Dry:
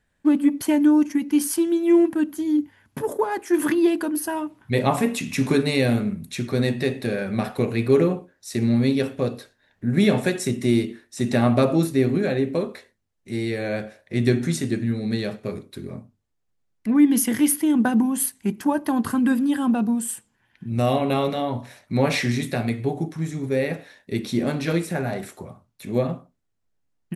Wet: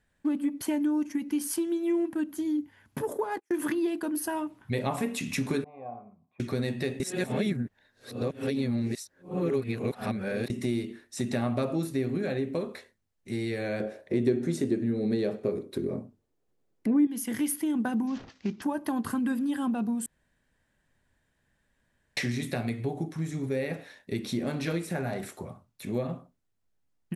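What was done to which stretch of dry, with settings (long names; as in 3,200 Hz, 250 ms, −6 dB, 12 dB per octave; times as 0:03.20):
0:03.36–0:04.15: noise gate −31 dBFS, range −39 dB
0:05.64–0:06.40: formant resonators in series a
0:07.00–0:10.50: reverse
0:13.80–0:17.07: parametric band 400 Hz +13.5 dB 1.8 octaves
0:18.07–0:18.62: variable-slope delta modulation 32 kbit/s
0:20.06–0:22.17: fill with room tone
whole clip: downward compressor 2.5 to 1, threshold −27 dBFS; level −2 dB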